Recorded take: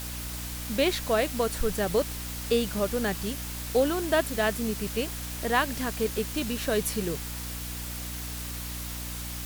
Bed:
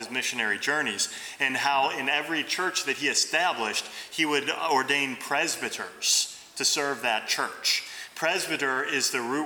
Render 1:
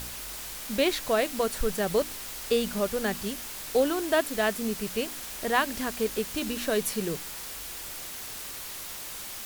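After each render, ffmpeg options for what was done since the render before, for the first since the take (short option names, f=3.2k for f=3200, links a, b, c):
-af "bandreject=f=60:t=h:w=4,bandreject=f=120:t=h:w=4,bandreject=f=180:t=h:w=4,bandreject=f=240:t=h:w=4,bandreject=f=300:t=h:w=4"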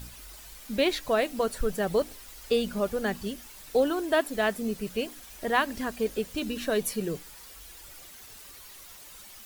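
-af "afftdn=nr=11:nf=-39"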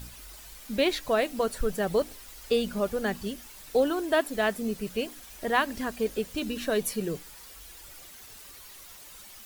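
-af anull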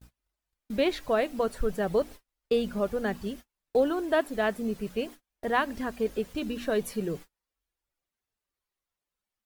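-af "agate=range=-37dB:threshold=-40dB:ratio=16:detection=peak,highshelf=f=3k:g=-9"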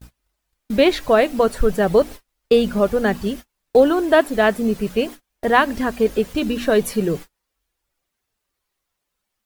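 -af "volume=11dB"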